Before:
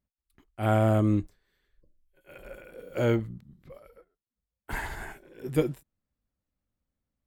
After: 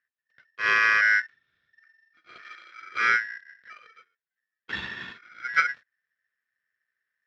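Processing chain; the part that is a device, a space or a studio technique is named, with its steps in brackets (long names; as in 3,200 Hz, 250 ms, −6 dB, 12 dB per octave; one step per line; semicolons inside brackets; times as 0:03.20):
ring modulator pedal into a guitar cabinet (ring modulator with a square carrier 1,800 Hz; loudspeaker in its box 82–4,000 Hz, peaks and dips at 290 Hz −7 dB, 830 Hz −9 dB, 1,500 Hz +7 dB)
0:02.42–0:02.82: high-pass filter 1,100 Hz 6 dB per octave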